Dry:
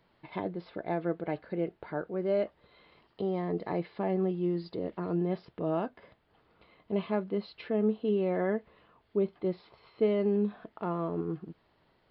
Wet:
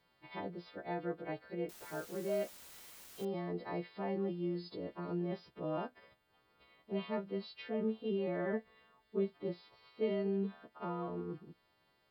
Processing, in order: frequency quantiser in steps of 2 st; 1.69–3.25 requantised 8-bit, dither triangular; 8.53–9.33 comb 4.6 ms, depth 45%; gain -7 dB

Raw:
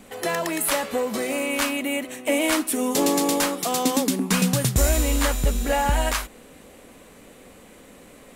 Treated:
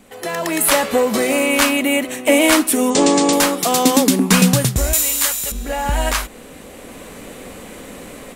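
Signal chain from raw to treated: 2.9–3.33 steep low-pass 9000 Hz 96 dB/oct; 4.93–5.52 tilt +4.5 dB/oct; AGC gain up to 13.5 dB; gain -1 dB

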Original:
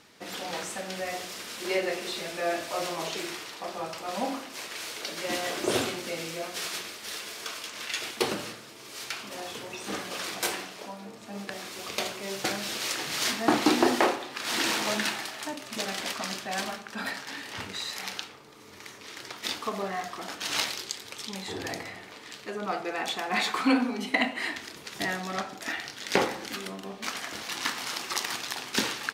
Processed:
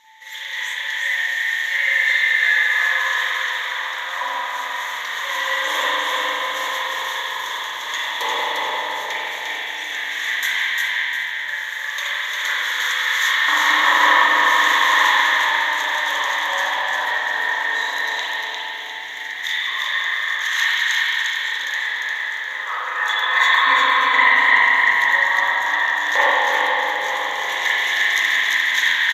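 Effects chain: dynamic EQ 2100 Hz, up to +3 dB, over -40 dBFS, Q 0.88; LFO high-pass saw down 0.11 Hz 710–2100 Hz; whine 880 Hz -55 dBFS; ripple EQ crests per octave 1.1, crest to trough 16 dB; on a send: frequency-shifting echo 0.42 s, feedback 64%, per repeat -55 Hz, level -16.5 dB; on the sum: spring tank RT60 3.4 s, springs 36/43 ms, chirp 65 ms, DRR -9.5 dB; lo-fi delay 0.351 s, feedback 35%, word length 9-bit, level -3 dB; gain -4.5 dB

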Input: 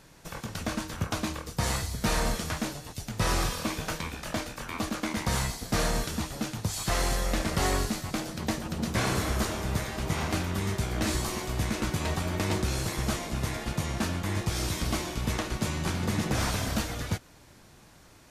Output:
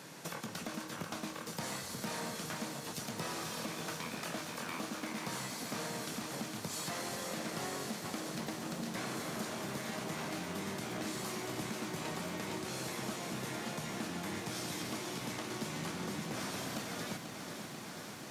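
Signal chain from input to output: HPF 150 Hz 24 dB/oct; compressor 6:1, threshold -44 dBFS, peak gain reduction 18.5 dB; soft clip -34.5 dBFS, distortion -22 dB; lo-fi delay 0.489 s, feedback 80%, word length 12-bit, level -8 dB; gain +5.5 dB

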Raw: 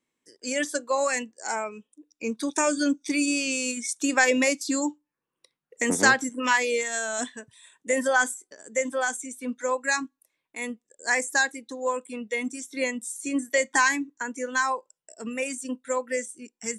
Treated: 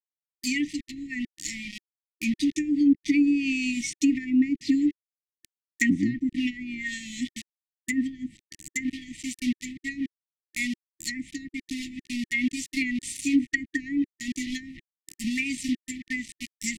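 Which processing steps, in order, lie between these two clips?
requantised 6-bit, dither none; treble ducked by the level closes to 680 Hz, closed at -19.5 dBFS; brick-wall FIR band-stop 340–1800 Hz; gain +5.5 dB

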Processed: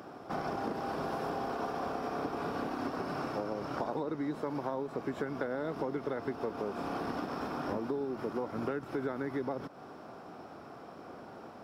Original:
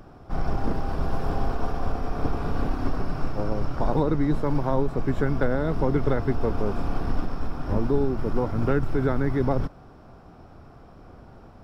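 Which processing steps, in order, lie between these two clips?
HPF 260 Hz 12 dB/oct; compressor 6:1, threshold -36 dBFS, peak gain reduction 15 dB; gain +3.5 dB

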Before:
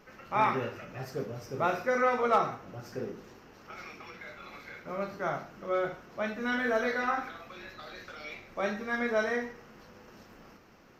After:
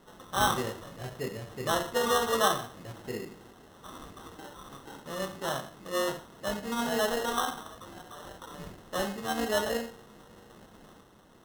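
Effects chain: sample-and-hold 18×; speed mistake 25 fps video run at 24 fps

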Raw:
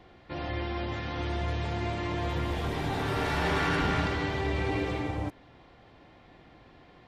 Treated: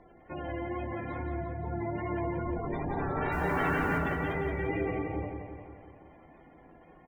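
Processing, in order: spectral gate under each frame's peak -15 dB strong; bell 93 Hz -8.5 dB 1.3 oct; wow and flutter 42 cents; air absorption 180 m; 3.32–3.98 requantised 10-bit, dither triangular; doubler 12 ms -10.5 dB; feedback echo 0.174 s, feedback 59%, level -6 dB

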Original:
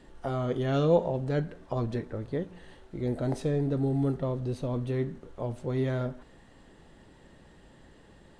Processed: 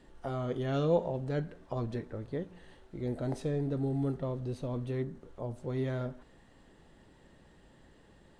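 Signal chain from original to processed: 5.02–5.63 dynamic EQ 2600 Hz, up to -7 dB, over -59 dBFS, Q 0.95; gain -4.5 dB

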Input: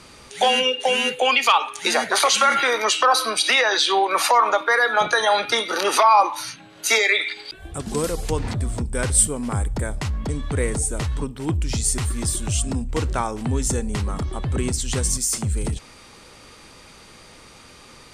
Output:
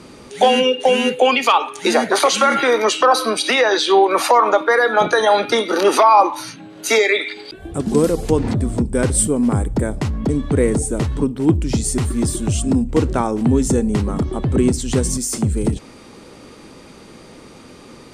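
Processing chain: bell 280 Hz +13 dB 2.5 oct; gain -1 dB

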